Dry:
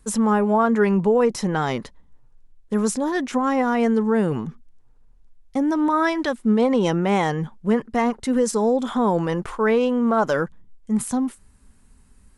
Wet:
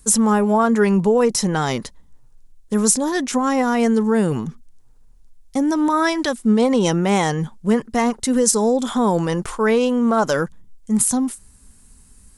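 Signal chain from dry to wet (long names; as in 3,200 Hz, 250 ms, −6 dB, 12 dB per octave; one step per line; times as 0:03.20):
bass and treble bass +2 dB, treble +12 dB
level +1.5 dB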